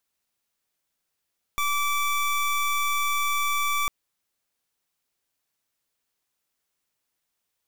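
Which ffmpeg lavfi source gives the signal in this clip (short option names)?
-f lavfi -i "aevalsrc='0.0596*(2*lt(mod(1160*t,1),0.24)-1)':d=2.3:s=44100"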